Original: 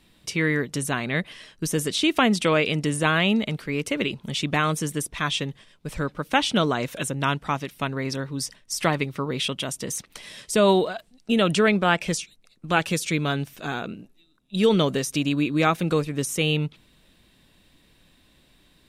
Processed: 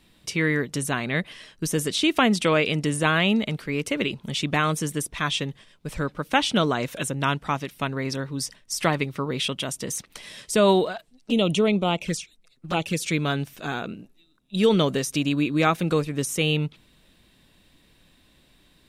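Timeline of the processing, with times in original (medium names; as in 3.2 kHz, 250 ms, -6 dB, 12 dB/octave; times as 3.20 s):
10.96–13.00 s: touch-sensitive flanger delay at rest 9.5 ms, full sweep at -18.5 dBFS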